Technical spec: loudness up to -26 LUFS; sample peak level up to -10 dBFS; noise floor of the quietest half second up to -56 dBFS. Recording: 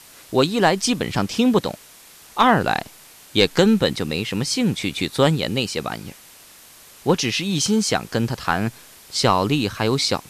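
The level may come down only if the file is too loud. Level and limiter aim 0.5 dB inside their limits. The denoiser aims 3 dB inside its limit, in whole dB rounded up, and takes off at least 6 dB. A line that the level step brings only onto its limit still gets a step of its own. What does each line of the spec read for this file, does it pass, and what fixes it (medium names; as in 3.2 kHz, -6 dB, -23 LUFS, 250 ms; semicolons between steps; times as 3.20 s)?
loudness -20.5 LUFS: fail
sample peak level -2.0 dBFS: fail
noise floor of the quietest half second -47 dBFS: fail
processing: noise reduction 6 dB, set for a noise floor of -47 dBFS; trim -6 dB; peak limiter -10.5 dBFS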